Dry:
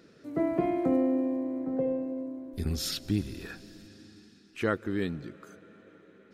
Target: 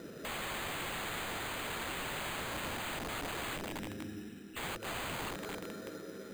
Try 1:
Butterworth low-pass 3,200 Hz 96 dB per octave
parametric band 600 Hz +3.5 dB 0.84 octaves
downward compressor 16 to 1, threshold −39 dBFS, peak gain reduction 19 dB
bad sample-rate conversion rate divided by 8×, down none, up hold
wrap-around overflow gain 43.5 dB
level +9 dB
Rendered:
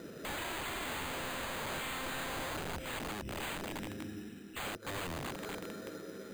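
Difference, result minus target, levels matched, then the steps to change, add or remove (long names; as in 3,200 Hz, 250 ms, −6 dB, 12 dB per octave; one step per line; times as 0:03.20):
downward compressor: peak gain reduction +8 dB
change: downward compressor 16 to 1, threshold −30.5 dBFS, peak gain reduction 11 dB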